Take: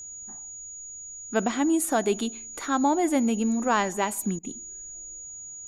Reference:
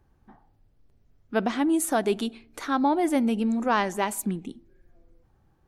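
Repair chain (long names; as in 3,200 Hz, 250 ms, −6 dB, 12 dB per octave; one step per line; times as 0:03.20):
notch filter 6,800 Hz, Q 30
repair the gap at 0:04.39, 41 ms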